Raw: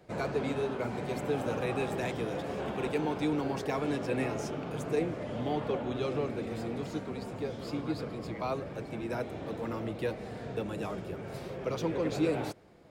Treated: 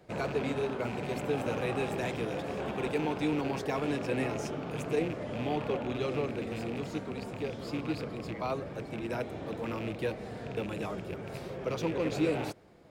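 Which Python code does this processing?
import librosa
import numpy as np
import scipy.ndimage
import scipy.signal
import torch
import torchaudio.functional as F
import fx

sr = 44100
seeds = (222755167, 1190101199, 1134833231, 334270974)

y = fx.rattle_buzz(x, sr, strikes_db=-37.0, level_db=-33.0)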